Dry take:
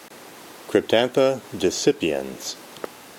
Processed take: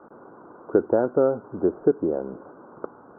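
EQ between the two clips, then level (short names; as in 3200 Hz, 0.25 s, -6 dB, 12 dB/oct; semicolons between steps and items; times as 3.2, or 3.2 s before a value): rippled Chebyshev low-pass 1500 Hz, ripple 3 dB; air absorption 250 m; 0.0 dB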